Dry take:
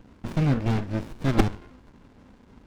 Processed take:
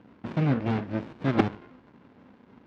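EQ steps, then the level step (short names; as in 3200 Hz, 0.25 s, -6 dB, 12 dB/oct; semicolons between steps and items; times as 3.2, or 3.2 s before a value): BPF 140–3100 Hz; 0.0 dB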